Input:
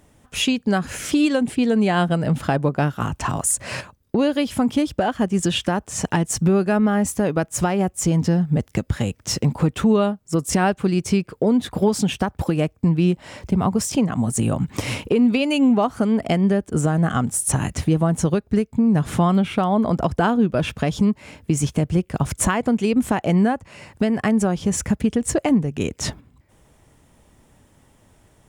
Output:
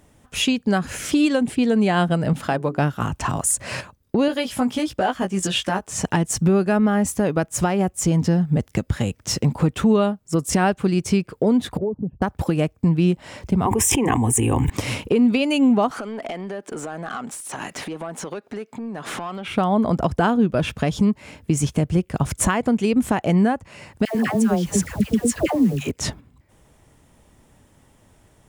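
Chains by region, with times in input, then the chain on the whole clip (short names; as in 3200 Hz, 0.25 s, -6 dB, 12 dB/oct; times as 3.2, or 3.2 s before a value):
2.33–2.78 low shelf 170 Hz -10 dB + notches 60/120/180/240/300/360/420 Hz
4.28–5.91 low shelf 280 Hz -9 dB + doubler 16 ms -4.5 dB
11.77–12.22 formant sharpening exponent 2 + steep low-pass 970 Hz + compressor 2:1, threshold -25 dBFS
13.65–14.7 fixed phaser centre 910 Hz, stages 8 + fast leveller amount 100%
15.91–19.48 HPF 240 Hz + compressor 10:1, threshold -30 dBFS + overdrive pedal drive 18 dB, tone 3300 Hz, clips at -18.5 dBFS
24.05–25.91 dispersion lows, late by 0.102 s, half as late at 780 Hz + requantised 8-bit, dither triangular
whole clip: dry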